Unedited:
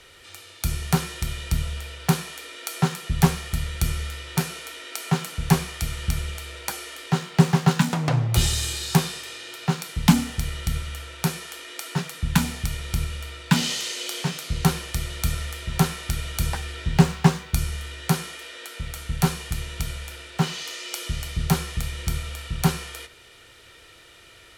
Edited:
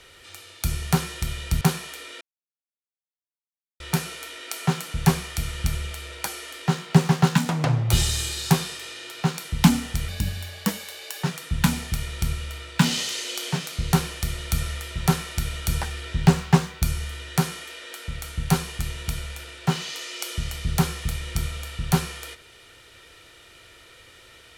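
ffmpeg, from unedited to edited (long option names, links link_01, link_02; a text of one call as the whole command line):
ffmpeg -i in.wav -filter_complex "[0:a]asplit=6[link_01][link_02][link_03][link_04][link_05][link_06];[link_01]atrim=end=1.612[link_07];[link_02]atrim=start=2.048:end=2.65,asetpts=PTS-STARTPTS,afade=type=out:start_time=0.598:duration=0.004:curve=hsin[link_08];[link_03]atrim=start=2.65:end=4.24,asetpts=PTS-STARTPTS,volume=0[link_09];[link_04]atrim=start=4.24:end=10.524,asetpts=PTS-STARTPTS,afade=type=in:duration=0.004:curve=hsin[link_10];[link_05]atrim=start=10.52:end=11.95,asetpts=PTS-STARTPTS,asetrate=54684,aresample=44100,atrim=end_sample=50857,asetpts=PTS-STARTPTS[link_11];[link_06]atrim=start=11.946[link_12];[link_08][link_09][link_10]concat=n=3:v=0:a=1[link_13];[link_07][link_13]acrossfade=duration=0.004:curve1=hsin:curve2=hsin[link_14];[link_14][link_11]acrossfade=duration=0.004:curve1=hsin:curve2=hsin[link_15];[link_15][link_12]acrossfade=duration=0.004:curve1=hsin:curve2=hsin" out.wav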